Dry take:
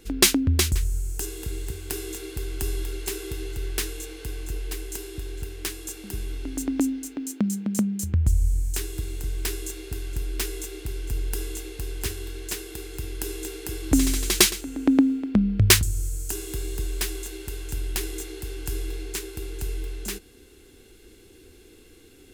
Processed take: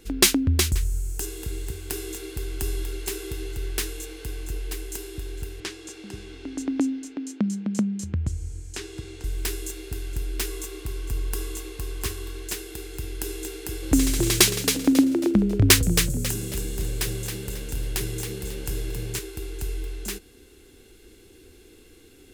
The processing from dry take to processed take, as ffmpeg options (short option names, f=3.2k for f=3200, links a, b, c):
-filter_complex "[0:a]asettb=1/sr,asplit=3[a][b][c];[a]atrim=end=5.604[d];[b]atrim=start=5.6:end=9.24,asetpts=PTS-STARTPTS,afade=t=in:d=0.004:c=qsin,afade=t=out:st=3.636:d=0.004:c=qsin,highpass=100,lowpass=6k[e];[c]atrim=start=9.236[f];[d][e]acrossfade=d=0.004:c1=hsin:c2=qsin[g];[g][f]acrossfade=d=0.004:c1=qsin:c2=hsin,asettb=1/sr,asplit=3[h][i][j];[h]atrim=end=10.484[k];[i]atrim=start=10.48:end=12.43,asetpts=PTS-STARTPTS,afade=t=in:d=0.004:c=qsin,afade=t=out:st=1.946:d=0.004:c=qsin,equalizer=f=1.1k:w=7.4:g=10.5[l];[j]atrim=start=12.426[m];[k][l]acrossfade=d=0.004:c1=hsin:c2=qsin[n];[n][m]acrossfade=d=0.004:c1=qsin:c2=hsin,asettb=1/sr,asplit=3[o][p][q];[o]atrim=end=13.554[r];[p]atrim=start=13.55:end=19.19,asetpts=PTS-STARTPTS,afade=t=in:d=0.004:c=qsin,afade=t=out:st=5.636:d=0.004:c=qsin,asplit=5[s][t][u][v][w];[t]adelay=272,afreqshift=71,volume=-6.5dB[x];[u]adelay=544,afreqshift=142,volume=-15.4dB[y];[v]adelay=816,afreqshift=213,volume=-24.2dB[z];[w]adelay=1088,afreqshift=284,volume=-33.1dB[aa];[s][x][y][z][aa]amix=inputs=5:normalize=0,atrim=end_sample=248724[ab];[q]atrim=start=19.186[ac];[r][ab]acrossfade=d=0.004:c1=hsin:c2=qsin[ad];[ad][ac]acrossfade=d=0.004:c1=qsin:c2=hsin"